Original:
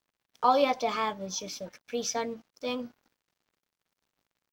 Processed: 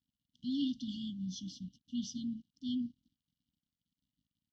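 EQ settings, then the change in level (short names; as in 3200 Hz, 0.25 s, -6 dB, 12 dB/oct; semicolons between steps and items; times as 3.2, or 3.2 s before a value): HPF 40 Hz; brick-wall FIR band-stop 300–2800 Hz; tape spacing loss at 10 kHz 29 dB; +3.0 dB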